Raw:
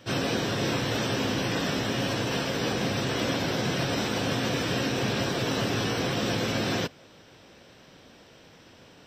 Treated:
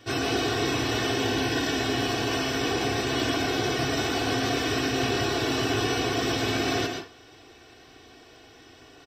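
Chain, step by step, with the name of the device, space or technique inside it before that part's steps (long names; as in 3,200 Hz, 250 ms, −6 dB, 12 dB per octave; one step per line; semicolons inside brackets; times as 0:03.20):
0:01.10–0:01.79: notch filter 1,200 Hz, Q 8.8
microphone above a desk (comb filter 2.7 ms, depth 85%; convolution reverb RT60 0.40 s, pre-delay 109 ms, DRR 3.5 dB)
level −1.5 dB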